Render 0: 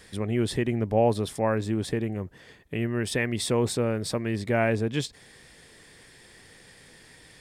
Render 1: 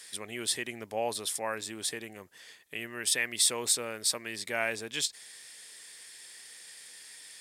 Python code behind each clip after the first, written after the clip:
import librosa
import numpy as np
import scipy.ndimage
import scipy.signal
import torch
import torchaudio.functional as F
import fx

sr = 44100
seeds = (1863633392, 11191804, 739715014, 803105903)

y = fx.highpass(x, sr, hz=1300.0, slope=6)
y = fx.peak_eq(y, sr, hz=11000.0, db=12.0, octaves=2.6)
y = F.gain(torch.from_numpy(y), -2.5).numpy()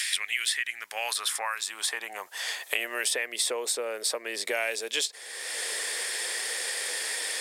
y = fx.filter_sweep_highpass(x, sr, from_hz=2300.0, to_hz=480.0, start_s=0.1, end_s=3.31, q=2.1)
y = fx.band_squash(y, sr, depth_pct=100)
y = F.gain(torch.from_numpy(y), 2.5).numpy()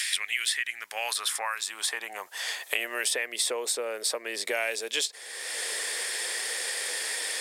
y = x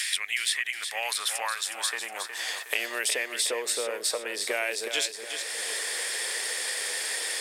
y = fx.echo_feedback(x, sr, ms=365, feedback_pct=46, wet_db=-8.0)